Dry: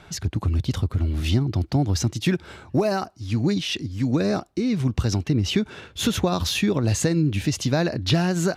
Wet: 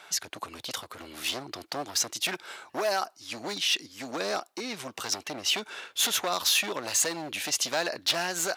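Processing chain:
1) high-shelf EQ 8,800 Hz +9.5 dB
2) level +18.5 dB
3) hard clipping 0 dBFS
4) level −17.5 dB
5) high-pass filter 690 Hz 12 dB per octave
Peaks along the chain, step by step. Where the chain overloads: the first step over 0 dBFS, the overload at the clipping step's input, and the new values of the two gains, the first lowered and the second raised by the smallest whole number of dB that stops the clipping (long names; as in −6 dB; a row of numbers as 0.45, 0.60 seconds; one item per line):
−9.0, +9.5, 0.0, −17.5, −12.5 dBFS
step 2, 9.5 dB
step 2 +8.5 dB, step 4 −7.5 dB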